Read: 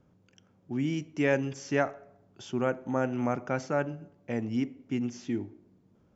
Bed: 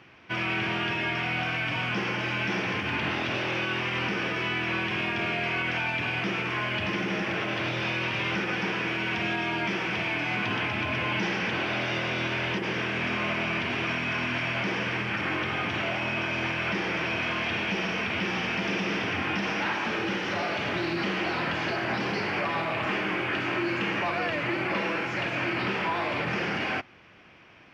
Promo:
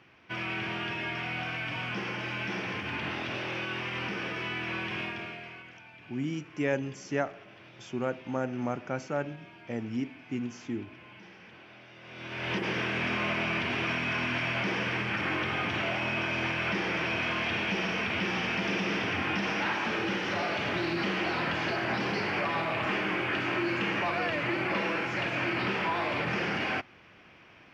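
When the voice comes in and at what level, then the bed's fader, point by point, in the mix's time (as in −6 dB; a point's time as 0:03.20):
5.40 s, −3.0 dB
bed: 0:05.02 −5.5 dB
0:05.79 −23 dB
0:11.96 −23 dB
0:12.54 −1.5 dB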